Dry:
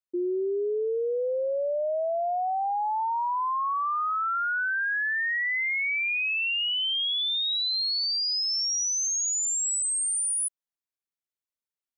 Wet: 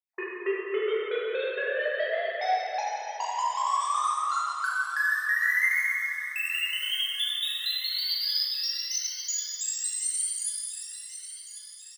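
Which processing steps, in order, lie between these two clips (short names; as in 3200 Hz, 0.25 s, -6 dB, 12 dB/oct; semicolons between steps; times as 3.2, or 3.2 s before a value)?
random spectral dropouts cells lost 71%; notch 580 Hz, Q 12; added harmonics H 7 -13 dB, 8 -28 dB, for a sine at -24 dBFS; bell 1800 Hz +11.5 dB 0.51 oct; comb 4.7 ms, depth 31%; compressor, threshold -31 dBFS, peak gain reduction 15 dB; Chebyshev high-pass 390 Hz, order 4; thin delay 1.092 s, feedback 53%, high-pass 2100 Hz, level -13 dB; plate-style reverb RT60 3.6 s, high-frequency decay 0.65×, DRR -8 dB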